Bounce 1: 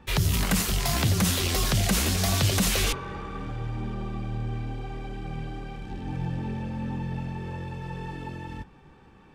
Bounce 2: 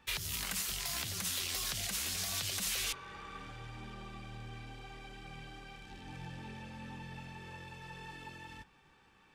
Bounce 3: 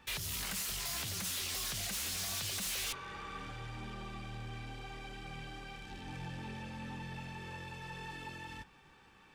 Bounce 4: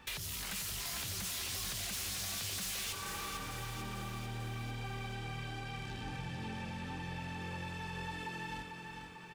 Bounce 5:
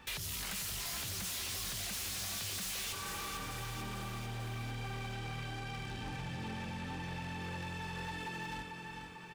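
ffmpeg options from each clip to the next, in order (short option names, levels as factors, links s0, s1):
-af "tiltshelf=f=970:g=-8,alimiter=limit=0.158:level=0:latency=1:release=398,volume=0.355"
-af "asoftclip=type=tanh:threshold=0.0126,volume=1.5"
-filter_complex "[0:a]acompressor=threshold=0.00708:ratio=6,asplit=2[s0][s1];[s1]aecho=0:1:446|892|1338|1784|2230|2676|3122:0.501|0.286|0.163|0.0928|0.0529|0.0302|0.0172[s2];[s0][s2]amix=inputs=2:normalize=0,volume=1.5"
-af "aeval=exprs='0.0158*(abs(mod(val(0)/0.0158+3,4)-2)-1)':c=same,volume=1.12"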